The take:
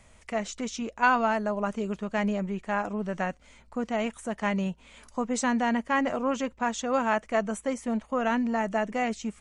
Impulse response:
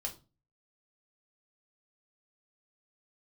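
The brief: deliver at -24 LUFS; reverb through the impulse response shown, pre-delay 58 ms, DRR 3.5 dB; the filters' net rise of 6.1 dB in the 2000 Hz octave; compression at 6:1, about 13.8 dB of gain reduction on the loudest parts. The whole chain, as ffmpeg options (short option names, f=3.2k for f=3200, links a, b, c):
-filter_complex "[0:a]equalizer=f=2k:t=o:g=8,acompressor=threshold=-29dB:ratio=6,asplit=2[a][b];[1:a]atrim=start_sample=2205,adelay=58[c];[b][c]afir=irnorm=-1:irlink=0,volume=-3.5dB[d];[a][d]amix=inputs=2:normalize=0,volume=8dB"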